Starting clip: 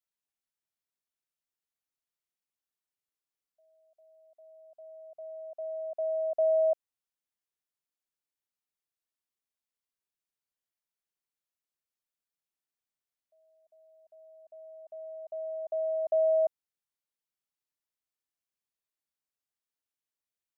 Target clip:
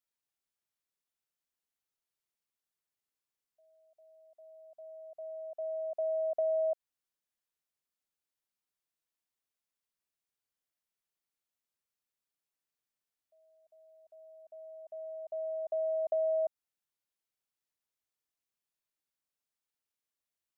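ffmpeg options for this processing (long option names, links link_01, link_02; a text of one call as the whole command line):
ffmpeg -i in.wav -af "acompressor=threshold=-30dB:ratio=3" out.wav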